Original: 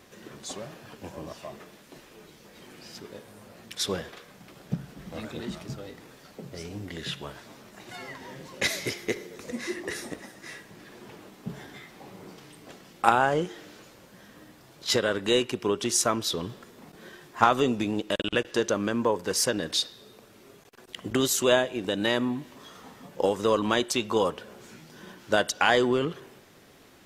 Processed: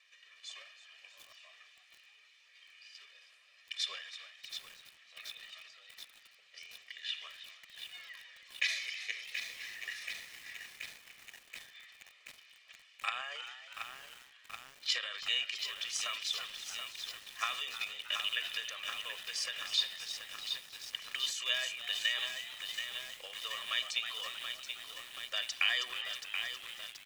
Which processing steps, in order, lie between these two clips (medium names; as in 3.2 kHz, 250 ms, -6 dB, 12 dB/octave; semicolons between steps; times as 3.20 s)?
ladder band-pass 2.9 kHz, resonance 45%; comb 1.7 ms, depth 97%; frequency-shifting echo 319 ms, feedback 55%, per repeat +88 Hz, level -12.5 dB; transient shaper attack +5 dB, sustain +9 dB; bit-crushed delay 729 ms, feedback 80%, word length 8-bit, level -6.5 dB